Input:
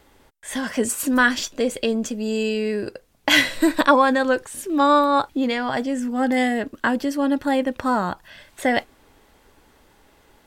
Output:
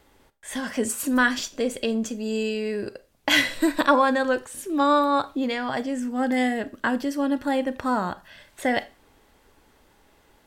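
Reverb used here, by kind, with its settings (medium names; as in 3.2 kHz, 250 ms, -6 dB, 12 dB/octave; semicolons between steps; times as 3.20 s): Schroeder reverb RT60 0.31 s, combs from 28 ms, DRR 15 dB; trim -3.5 dB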